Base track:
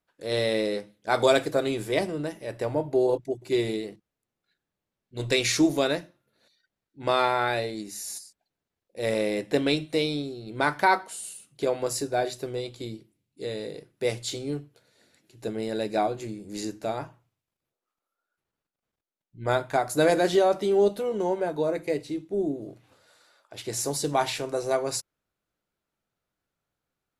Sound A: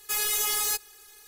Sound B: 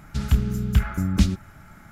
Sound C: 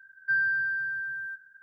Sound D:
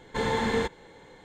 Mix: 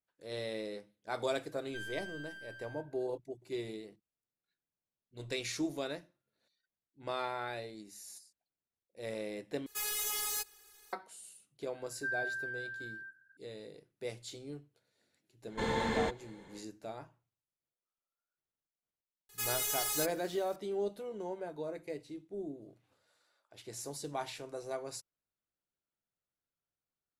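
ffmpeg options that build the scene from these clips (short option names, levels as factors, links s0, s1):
-filter_complex "[3:a]asplit=2[s0][s1];[1:a]asplit=2[s2][s3];[0:a]volume=0.2[s4];[s0]aeval=exprs='clip(val(0),-1,0.0133)':c=same[s5];[s4]asplit=2[s6][s7];[s6]atrim=end=9.664[s8];[s2]atrim=end=1.27,asetpts=PTS-STARTPTS,volume=0.355[s9];[s7]atrim=start=10.926[s10];[s5]atrim=end=1.62,asetpts=PTS-STARTPTS,volume=0.168,afade=t=in:d=0.004:c=hsin,afade=t=out:st=1.616:d=0.004:c=hsin,adelay=1460[s11];[s1]atrim=end=1.62,asetpts=PTS-STARTPTS,volume=0.282,afade=t=in:d=0.004:c=hsin,afade=t=out:st=1.616:d=0.004:c=hsin,adelay=11750[s12];[4:a]atrim=end=1.24,asetpts=PTS-STARTPTS,volume=0.501,afade=t=in:d=0.1,afade=t=out:st=1.14:d=0.1,adelay=15430[s13];[s3]atrim=end=1.27,asetpts=PTS-STARTPTS,volume=0.398,afade=t=in:d=0.004:c=hsin,afade=t=out:st=1.266:d=0.004:c=hsin,adelay=19290[s14];[s8][s9]acrossfade=d=0.004:c1=hsin:c2=hsin[s15];[s15][s10]acrossfade=d=0.004:c1=hsin:c2=hsin[s16];[s16][s11][s12][s13][s14]amix=inputs=5:normalize=0"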